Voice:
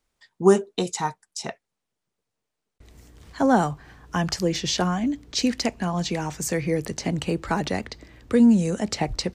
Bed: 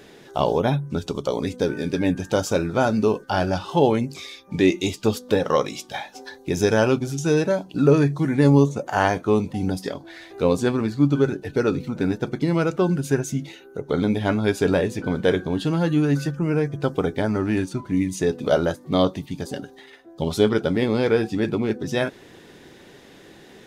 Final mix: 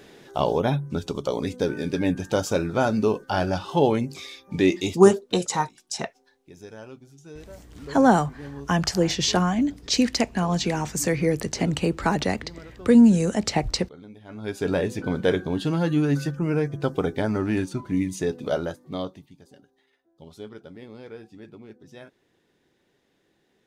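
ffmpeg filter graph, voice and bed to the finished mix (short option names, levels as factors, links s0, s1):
-filter_complex "[0:a]adelay=4550,volume=1.26[s0];[1:a]volume=9.44,afade=t=out:st=4.82:d=0.36:silence=0.0841395,afade=t=in:st=14.28:d=0.6:silence=0.0841395,afade=t=out:st=17.9:d=1.47:silence=0.105925[s1];[s0][s1]amix=inputs=2:normalize=0"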